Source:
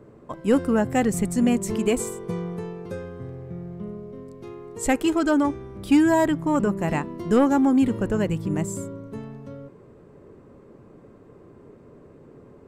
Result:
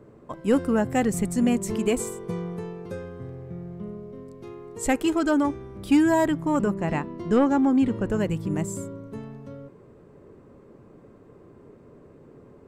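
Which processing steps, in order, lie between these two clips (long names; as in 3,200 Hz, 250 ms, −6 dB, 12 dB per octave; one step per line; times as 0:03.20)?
0:06.74–0:08.09: high-frequency loss of the air 62 metres
level −1.5 dB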